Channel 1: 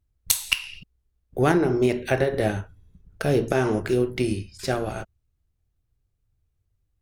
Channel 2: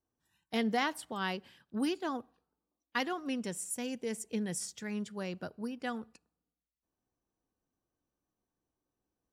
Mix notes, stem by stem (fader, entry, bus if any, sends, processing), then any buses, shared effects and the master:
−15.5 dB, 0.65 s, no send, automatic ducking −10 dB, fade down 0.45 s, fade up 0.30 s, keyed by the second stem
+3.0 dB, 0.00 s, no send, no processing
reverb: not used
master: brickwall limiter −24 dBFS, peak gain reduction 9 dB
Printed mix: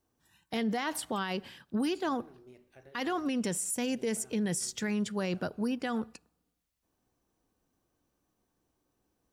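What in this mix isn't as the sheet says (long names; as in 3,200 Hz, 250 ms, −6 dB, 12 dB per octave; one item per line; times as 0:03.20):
stem 1 −15.5 dB → −24.0 dB
stem 2 +3.0 dB → +9.5 dB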